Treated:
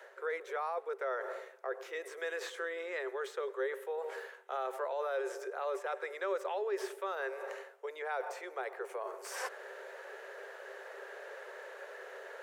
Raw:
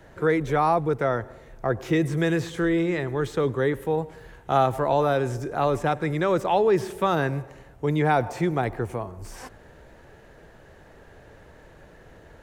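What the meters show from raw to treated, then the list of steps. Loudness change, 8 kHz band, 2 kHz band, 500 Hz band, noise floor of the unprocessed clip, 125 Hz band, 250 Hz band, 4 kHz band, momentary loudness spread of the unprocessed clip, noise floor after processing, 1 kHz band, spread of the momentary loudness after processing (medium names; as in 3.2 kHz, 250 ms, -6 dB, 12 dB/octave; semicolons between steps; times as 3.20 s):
-15.0 dB, -6.5 dB, -8.5 dB, -12.5 dB, -51 dBFS, under -40 dB, under -25 dB, -11.0 dB, 11 LU, -54 dBFS, -14.5 dB, 11 LU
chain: reverse; compression 6:1, threshold -36 dBFS, peak gain reduction 19.5 dB; reverse; peak limiter -30.5 dBFS, peak gain reduction 4.5 dB; rippled Chebyshev high-pass 380 Hz, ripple 6 dB; trim +7.5 dB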